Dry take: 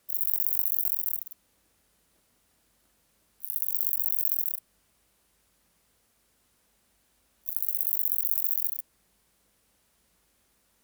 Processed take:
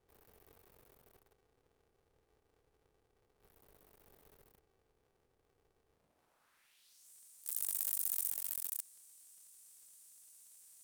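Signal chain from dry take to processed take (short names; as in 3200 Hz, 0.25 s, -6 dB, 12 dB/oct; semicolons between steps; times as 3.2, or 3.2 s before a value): per-bin compression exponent 0.6; in parallel at -11.5 dB: bit-crush 5-bit; on the sum: band-pass sweep 240 Hz -> 7900 Hz, 5.91–7.1; 8.31–8.72 power-law curve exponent 1.4; polarity switched at an audio rate 190 Hz; gain +2 dB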